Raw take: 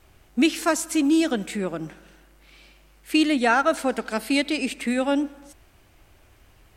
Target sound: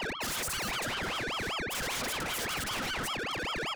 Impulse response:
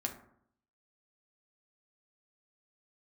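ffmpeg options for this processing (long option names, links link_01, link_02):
-filter_complex "[0:a]afftfilt=real='real(if(between(b,1,1008),(2*floor((b-1)/48)+1)*48-b,b),0)':imag='imag(if(between(b,1,1008),(2*floor((b-1)/48)+1)*48-b,b),0)*if(between(b,1,1008),-1,1)':win_size=2048:overlap=0.75,acontrast=83,aeval=exprs='0.708*sin(PI/2*6.31*val(0)/0.708)':channel_layout=same,equalizer=frequency=64:width_type=o:width=1.5:gain=-10,areverse,acompressor=threshold=-19dB:ratio=16,areverse,equalizer=frequency=100:width_type=o:width=0.67:gain=11,equalizer=frequency=400:width_type=o:width=0.67:gain=-11,equalizer=frequency=1000:width_type=o:width=0.67:gain=6,equalizer=frequency=2500:width_type=o:width=0.67:gain=-9,anlmdn=158,asplit=2[link_01][link_02];[link_02]adelay=255,lowpass=frequency=3500:poles=1,volume=-21dB,asplit=2[link_03][link_04];[link_04]adelay=255,lowpass=frequency=3500:poles=1,volume=0.23[link_05];[link_03][link_05]amix=inputs=2:normalize=0[link_06];[link_01][link_06]amix=inputs=2:normalize=0,atempo=1.8,agate=range=-35dB:threshold=-38dB:ratio=16:detection=peak,aeval=exprs='(tanh(56.2*val(0)+0.25)-tanh(0.25))/56.2':channel_layout=same,aeval=exprs='val(0)*sin(2*PI*1400*n/s+1400*0.65/5.1*sin(2*PI*5.1*n/s))':channel_layout=same,volume=4.5dB"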